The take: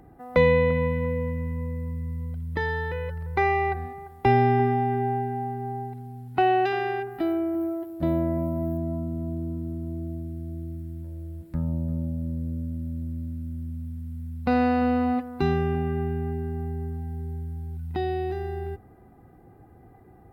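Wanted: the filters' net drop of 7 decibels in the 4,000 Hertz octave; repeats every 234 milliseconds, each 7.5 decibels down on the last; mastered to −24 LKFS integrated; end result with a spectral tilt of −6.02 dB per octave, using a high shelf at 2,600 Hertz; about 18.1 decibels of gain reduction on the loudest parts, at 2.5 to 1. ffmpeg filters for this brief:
ffmpeg -i in.wav -af "highshelf=frequency=2600:gain=-7,equalizer=frequency=4000:width_type=o:gain=-4,acompressor=threshold=-44dB:ratio=2.5,aecho=1:1:234|468|702|936|1170:0.422|0.177|0.0744|0.0312|0.0131,volume=16dB" out.wav

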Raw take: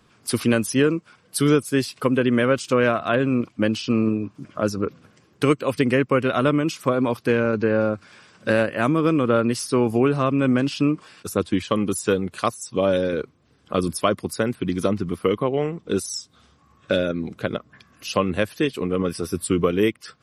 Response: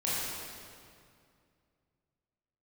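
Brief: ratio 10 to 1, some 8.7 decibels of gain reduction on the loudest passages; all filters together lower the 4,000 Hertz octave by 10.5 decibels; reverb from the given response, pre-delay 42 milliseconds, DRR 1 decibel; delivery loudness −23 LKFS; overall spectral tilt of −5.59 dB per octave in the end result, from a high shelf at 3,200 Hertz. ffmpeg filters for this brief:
-filter_complex "[0:a]highshelf=frequency=3200:gain=-8.5,equalizer=frequency=4000:width_type=o:gain=-8.5,acompressor=threshold=-23dB:ratio=10,asplit=2[link_01][link_02];[1:a]atrim=start_sample=2205,adelay=42[link_03];[link_02][link_03]afir=irnorm=-1:irlink=0,volume=-9.5dB[link_04];[link_01][link_04]amix=inputs=2:normalize=0,volume=4.5dB"

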